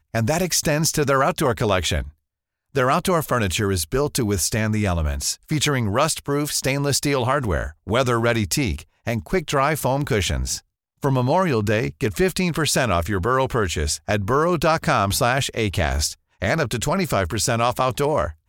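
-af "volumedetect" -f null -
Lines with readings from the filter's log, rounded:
mean_volume: -21.4 dB
max_volume: -6.6 dB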